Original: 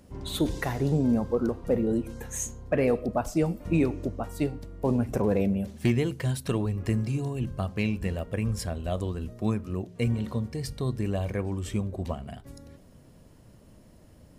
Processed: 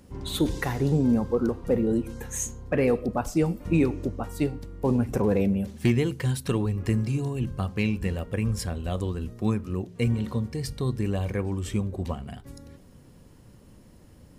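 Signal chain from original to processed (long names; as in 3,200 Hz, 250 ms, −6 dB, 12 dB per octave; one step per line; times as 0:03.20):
parametric band 640 Hz −6.5 dB 0.23 octaves
notch filter 640 Hz, Q 20
level +2 dB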